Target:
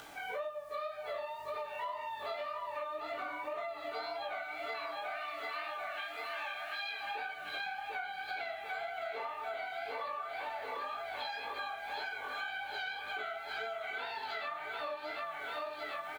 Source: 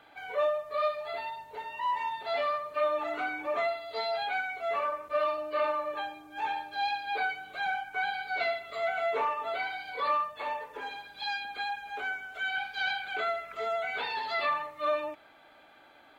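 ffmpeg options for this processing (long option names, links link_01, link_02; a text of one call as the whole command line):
ffmpeg -i in.wav -filter_complex "[0:a]asettb=1/sr,asplit=3[link_01][link_02][link_03];[link_01]atrim=end=4.564[link_04];[link_02]atrim=start=4.56:end=7.01,asetpts=PTS-STARTPTS,afade=type=in:duration=0.004:curve=qsin,afade=type=out:start_time=2.446:duration=0.004:curve=qsin,highpass=frequency=1900:width_type=q:width=1.5[link_05];[link_03]atrim=start=7.006[link_06];[link_04][link_05]acrossfade=duration=0.004:curve1=hsin:curve2=qsin[link_07];[link_07][link_06]acrossfade=duration=0.004:curve1=qsin:curve2=hsin,aecho=1:1:742|1484|2226|2968|3710|4452|5194|5936:0.562|0.332|0.196|0.115|0.0681|0.0402|0.0237|0.014,acrusher=bits=9:mix=0:aa=0.000001,acompressor=mode=upward:threshold=-47dB:ratio=2.5,flanger=delay=17.5:depth=6.9:speed=1.9,acompressor=threshold=-41dB:ratio=12,volume=4.5dB" out.wav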